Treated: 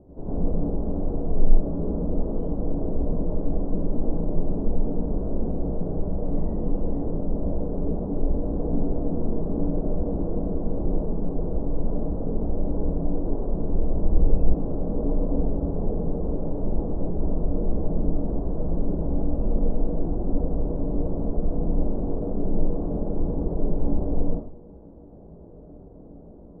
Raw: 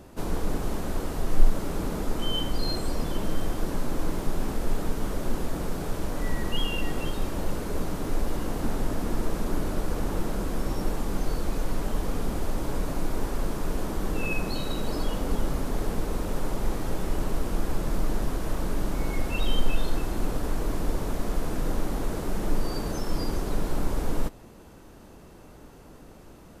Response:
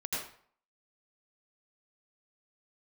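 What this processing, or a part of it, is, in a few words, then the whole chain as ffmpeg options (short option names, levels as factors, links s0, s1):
next room: -filter_complex "[0:a]lowpass=f=670:w=0.5412,lowpass=f=670:w=1.3066[s0];[1:a]atrim=start_sample=2205[s1];[s0][s1]afir=irnorm=-1:irlink=0,asettb=1/sr,asplit=3[s2][s3][s4];[s2]atrim=end=13.584[s5];[s3]atrim=start=13.58:end=14.54,asetpts=PTS-STARTPTS,afade=t=in:d=0.004:c=qsin,afade=t=out:st=0.956:d=0.004:c=qsin,asubboost=boost=9.5:cutoff=120[s6];[s4]atrim=start=14.536[s7];[s5][s6]acrossfade=d=0.004:c1=hsin:c2=qsin[s8];[s8][s7]acrossfade=d=0.004:c1=qsin:c2=hsin"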